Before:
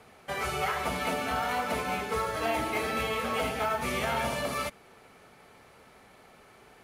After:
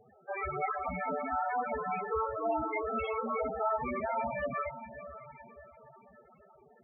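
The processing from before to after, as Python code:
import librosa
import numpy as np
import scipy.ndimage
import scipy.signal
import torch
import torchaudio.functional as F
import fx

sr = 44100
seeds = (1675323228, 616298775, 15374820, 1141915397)

y = fx.echo_diffused(x, sr, ms=549, feedback_pct=45, wet_db=-12.0)
y = fx.spec_topn(y, sr, count=8)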